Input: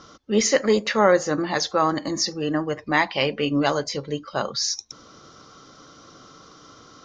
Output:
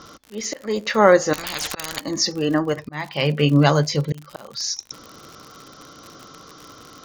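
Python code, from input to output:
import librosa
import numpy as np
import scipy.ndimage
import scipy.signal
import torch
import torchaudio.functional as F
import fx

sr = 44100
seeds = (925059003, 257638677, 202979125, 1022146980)

y = fx.peak_eq(x, sr, hz=150.0, db=15.0, octaves=0.22, at=(2.75, 4.33))
y = fx.auto_swell(y, sr, attack_ms=532.0)
y = fx.dmg_crackle(y, sr, seeds[0], per_s=71.0, level_db=-33.0)
y = fx.spectral_comp(y, sr, ratio=10.0, at=(1.33, 2.01))
y = y * librosa.db_to_amplitude(4.0)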